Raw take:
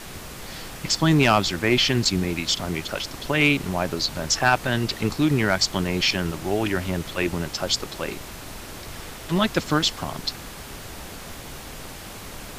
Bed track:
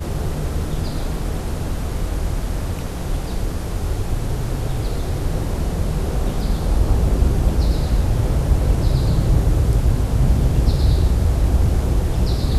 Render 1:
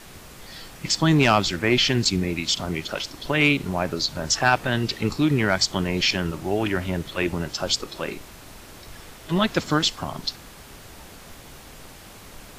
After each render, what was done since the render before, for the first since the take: noise print and reduce 6 dB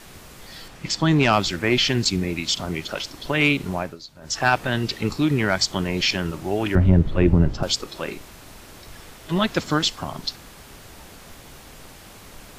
0.68–1.33 s: treble shelf 8.7 kHz -11 dB; 3.74–4.45 s: dip -16 dB, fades 0.24 s; 6.75–7.63 s: tilt EQ -4.5 dB/octave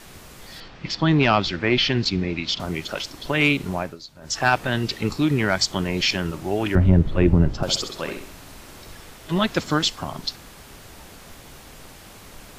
0.60–2.60 s: low-pass 5 kHz 24 dB/octave; 7.61–8.94 s: flutter echo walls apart 11.3 m, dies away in 0.52 s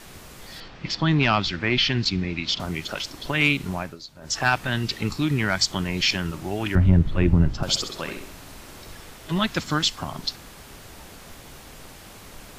dynamic bell 480 Hz, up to -7 dB, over -34 dBFS, Q 0.88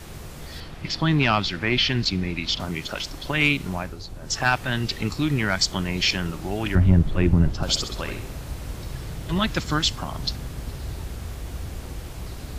add bed track -17 dB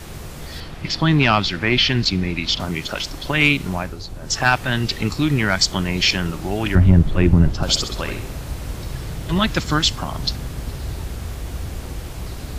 trim +4.5 dB; peak limiter -1 dBFS, peak gain reduction 1 dB

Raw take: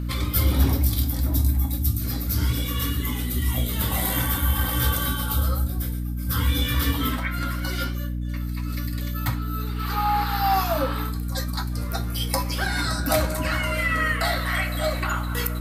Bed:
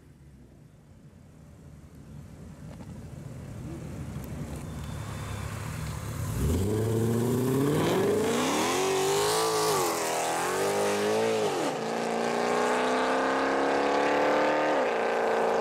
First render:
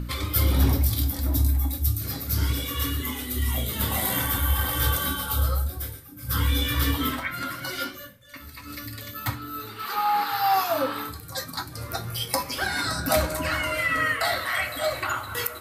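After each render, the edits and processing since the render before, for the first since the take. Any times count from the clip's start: de-hum 60 Hz, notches 5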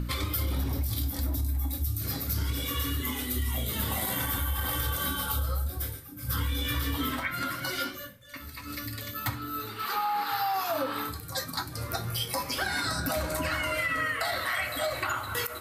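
peak limiter -16 dBFS, peak gain reduction 7.5 dB; compression, threshold -26 dBFS, peak gain reduction 6.5 dB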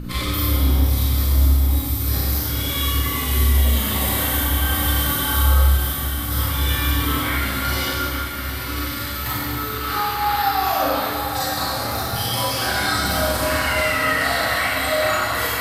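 echo that smears into a reverb 909 ms, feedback 69%, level -8.5 dB; Schroeder reverb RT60 1.8 s, combs from 30 ms, DRR -8.5 dB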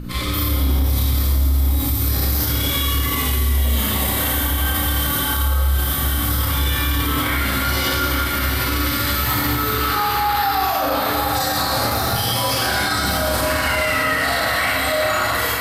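level rider; peak limiter -10.5 dBFS, peak gain reduction 9.5 dB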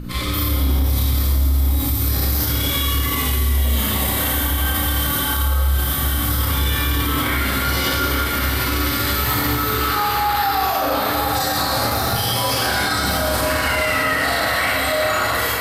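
add bed -9.5 dB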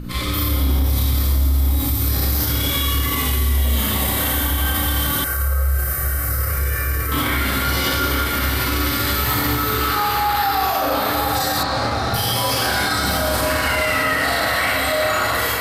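5.24–7.12 s: static phaser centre 920 Hz, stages 6; 11.63–12.14 s: distance through air 96 m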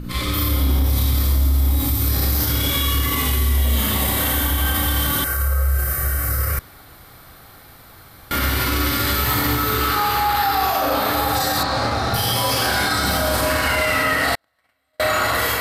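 6.59–8.31 s: room tone; 14.35–15.00 s: gate -14 dBFS, range -51 dB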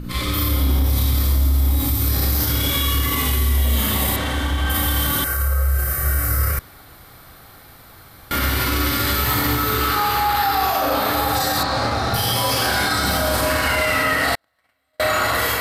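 4.16–4.70 s: distance through air 81 m; 6.03–6.51 s: doubling 27 ms -6 dB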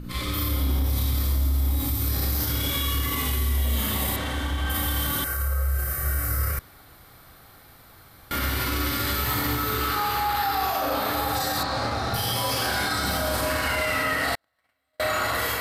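trim -6 dB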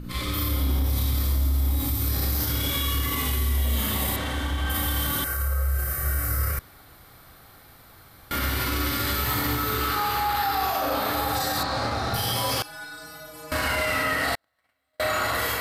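12.62–13.52 s: inharmonic resonator 150 Hz, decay 0.63 s, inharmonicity 0.008

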